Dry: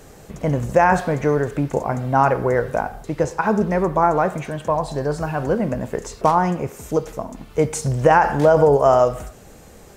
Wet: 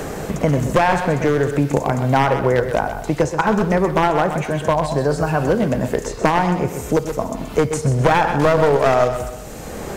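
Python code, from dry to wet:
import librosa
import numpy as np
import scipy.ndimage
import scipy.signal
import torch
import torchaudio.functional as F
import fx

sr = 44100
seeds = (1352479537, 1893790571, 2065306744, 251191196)

y = np.minimum(x, 2.0 * 10.0 ** (-13.0 / 20.0) - x)
y = fx.echo_feedback(y, sr, ms=127, feedback_pct=27, wet_db=-10.5)
y = fx.band_squash(y, sr, depth_pct=70)
y = y * librosa.db_to_amplitude(1.5)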